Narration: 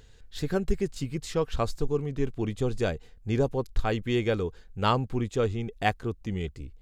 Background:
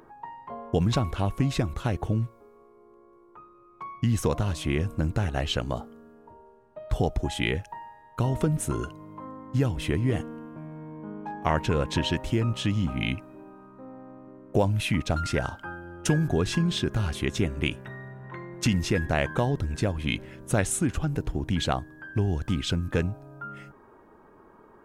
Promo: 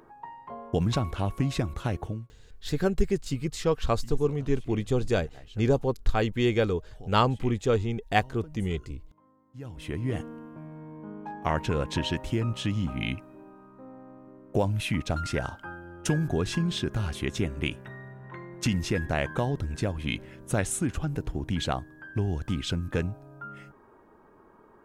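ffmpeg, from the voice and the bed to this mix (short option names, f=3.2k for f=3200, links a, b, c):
-filter_complex "[0:a]adelay=2300,volume=2dB[a];[1:a]volume=18dB,afade=t=out:st=1.95:d=0.33:silence=0.0944061,afade=t=in:st=9.55:d=0.69:silence=0.1[b];[a][b]amix=inputs=2:normalize=0"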